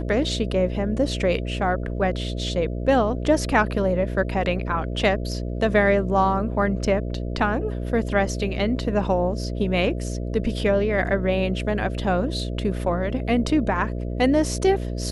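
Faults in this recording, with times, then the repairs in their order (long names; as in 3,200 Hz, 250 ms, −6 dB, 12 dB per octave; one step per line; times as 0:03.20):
mains buzz 60 Hz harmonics 11 −28 dBFS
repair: hum removal 60 Hz, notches 11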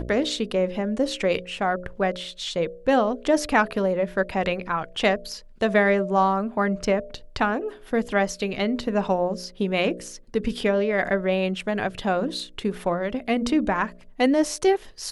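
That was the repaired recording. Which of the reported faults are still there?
none of them is left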